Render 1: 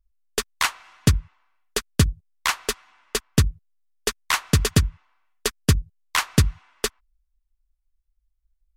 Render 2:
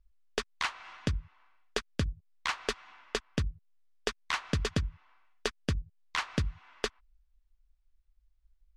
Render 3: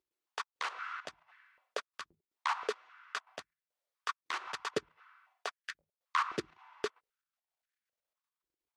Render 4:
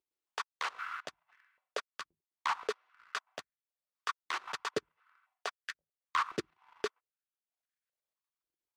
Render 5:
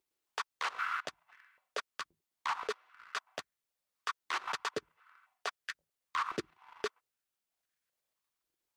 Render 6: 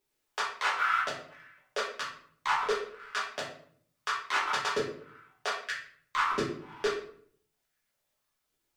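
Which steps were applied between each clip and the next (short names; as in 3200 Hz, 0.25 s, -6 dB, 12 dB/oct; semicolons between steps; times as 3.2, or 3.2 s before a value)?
LPF 4700 Hz 12 dB/oct; compressor 4:1, threshold -30 dBFS, peak gain reduction 15 dB; limiter -19.5 dBFS, peak gain reduction 7.5 dB; gain +3 dB
level quantiser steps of 13 dB; dynamic EQ 1300 Hz, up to +5 dB, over -56 dBFS, Q 2.3; stepped high-pass 3.8 Hz 360–1700 Hz; gain +1 dB
transient shaper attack 0 dB, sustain -7 dB; sample leveller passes 1; gain -2.5 dB
limiter -31 dBFS, peak gain reduction 10.5 dB; gain +6 dB
shoebox room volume 77 m³, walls mixed, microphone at 1.4 m; gain +1 dB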